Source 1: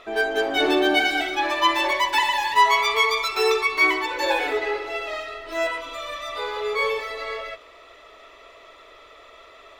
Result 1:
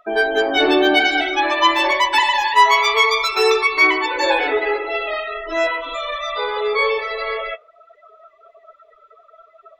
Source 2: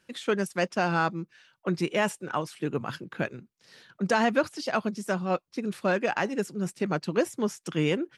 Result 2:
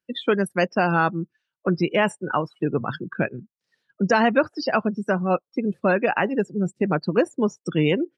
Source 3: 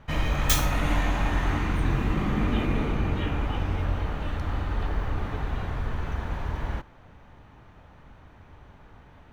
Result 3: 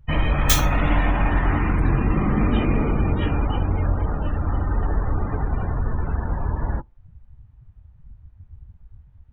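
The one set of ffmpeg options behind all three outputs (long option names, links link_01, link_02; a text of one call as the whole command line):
ffmpeg -i in.wav -filter_complex "[0:a]afftdn=noise_reduction=32:noise_floor=-36,asplit=2[link_01][link_02];[link_02]acompressor=threshold=-36dB:ratio=6,volume=2dB[link_03];[link_01][link_03]amix=inputs=2:normalize=0,volume=3.5dB" out.wav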